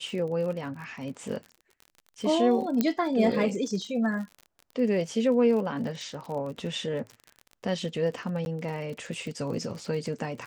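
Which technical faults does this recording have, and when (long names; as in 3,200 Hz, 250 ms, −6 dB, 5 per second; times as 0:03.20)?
surface crackle 45 per second −36 dBFS
0:02.81: click −11 dBFS
0:08.45–0:08.46: drop-out 11 ms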